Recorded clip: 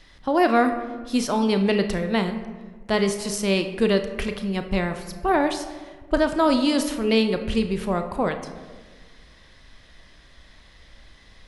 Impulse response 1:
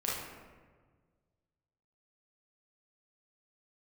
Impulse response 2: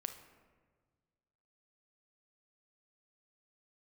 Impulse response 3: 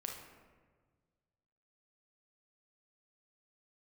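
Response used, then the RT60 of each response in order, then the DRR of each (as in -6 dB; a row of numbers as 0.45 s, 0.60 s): 2; 1.5 s, 1.5 s, 1.5 s; -6.5 dB, 7.0 dB, 0.5 dB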